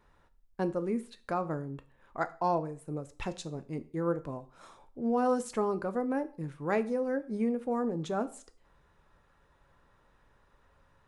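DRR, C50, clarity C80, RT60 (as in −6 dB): 11.0 dB, 18.0 dB, 22.0 dB, 0.45 s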